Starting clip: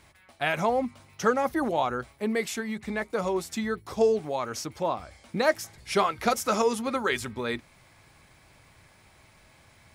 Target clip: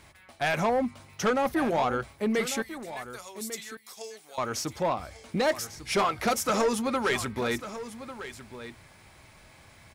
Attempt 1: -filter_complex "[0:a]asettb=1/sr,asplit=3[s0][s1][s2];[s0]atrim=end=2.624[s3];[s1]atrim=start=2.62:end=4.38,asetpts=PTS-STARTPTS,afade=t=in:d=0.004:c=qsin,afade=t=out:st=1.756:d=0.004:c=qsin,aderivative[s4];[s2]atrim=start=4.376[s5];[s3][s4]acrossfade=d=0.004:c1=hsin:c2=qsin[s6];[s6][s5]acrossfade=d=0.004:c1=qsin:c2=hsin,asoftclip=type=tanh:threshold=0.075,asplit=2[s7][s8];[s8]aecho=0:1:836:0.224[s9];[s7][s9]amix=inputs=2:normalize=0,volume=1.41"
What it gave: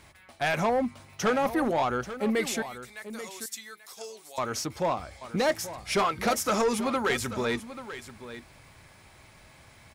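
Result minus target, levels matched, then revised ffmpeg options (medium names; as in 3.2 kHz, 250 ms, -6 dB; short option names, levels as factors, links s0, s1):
echo 311 ms early
-filter_complex "[0:a]asettb=1/sr,asplit=3[s0][s1][s2];[s0]atrim=end=2.624[s3];[s1]atrim=start=2.62:end=4.38,asetpts=PTS-STARTPTS,afade=t=in:d=0.004:c=qsin,afade=t=out:st=1.756:d=0.004:c=qsin,aderivative[s4];[s2]atrim=start=4.376[s5];[s3][s4]acrossfade=d=0.004:c1=hsin:c2=qsin[s6];[s6][s5]acrossfade=d=0.004:c1=qsin:c2=hsin,asoftclip=type=tanh:threshold=0.075,asplit=2[s7][s8];[s8]aecho=0:1:1147:0.224[s9];[s7][s9]amix=inputs=2:normalize=0,volume=1.41"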